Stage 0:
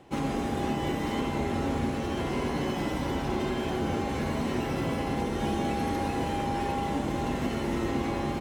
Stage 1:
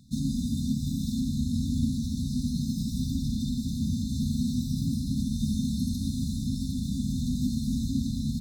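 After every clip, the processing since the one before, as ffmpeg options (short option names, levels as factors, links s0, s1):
-af "afftfilt=real='re*(1-between(b*sr/4096,270,3500))':imag='im*(1-between(b*sr/4096,270,3500))':win_size=4096:overlap=0.75,volume=1.68"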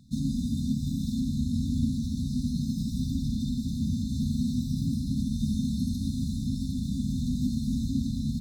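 -af "highshelf=f=3900:g=-5"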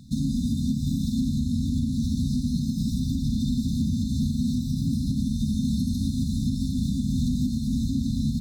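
-af "alimiter=level_in=1.12:limit=0.0631:level=0:latency=1:release=328,volume=0.891,volume=2.66"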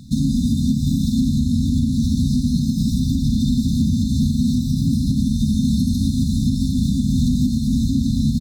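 -filter_complex "[0:a]asplit=2[s0][s1];[s1]adelay=230,highpass=300,lowpass=3400,asoftclip=type=hard:threshold=0.0501,volume=0.0398[s2];[s0][s2]amix=inputs=2:normalize=0,volume=2.24"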